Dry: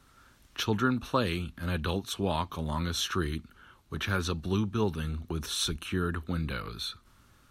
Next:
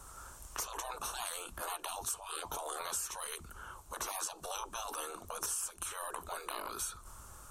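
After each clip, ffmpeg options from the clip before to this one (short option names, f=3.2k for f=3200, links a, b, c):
-af "afftfilt=real='re*lt(hypot(re,im),0.0316)':imag='im*lt(hypot(re,im),0.0316)':win_size=1024:overlap=0.75,equalizer=f=125:t=o:w=1:g=-7,equalizer=f=250:t=o:w=1:g=-12,equalizer=f=1k:t=o:w=1:g=5,equalizer=f=2k:t=o:w=1:g=-11,equalizer=f=4k:t=o:w=1:g=-11,equalizer=f=8k:t=o:w=1:g=10,acompressor=threshold=-46dB:ratio=6,volume=10.5dB"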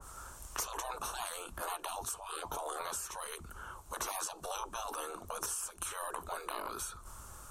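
-af "adynamicequalizer=threshold=0.002:dfrequency=1900:dqfactor=0.7:tfrequency=1900:tqfactor=0.7:attack=5:release=100:ratio=0.375:range=2.5:mode=cutabove:tftype=highshelf,volume=2dB"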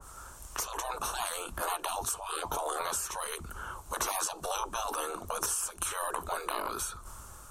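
-af "dynaudnorm=f=330:g=5:m=5dB,volume=1dB"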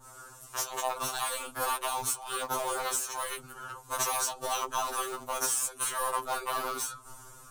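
-filter_complex "[0:a]asplit=2[a][b];[b]acrusher=bits=4:mix=0:aa=0.000001,volume=-6.5dB[c];[a][c]amix=inputs=2:normalize=0,afftfilt=real='re*2.45*eq(mod(b,6),0)':imag='im*2.45*eq(mod(b,6),0)':win_size=2048:overlap=0.75,volume=1.5dB"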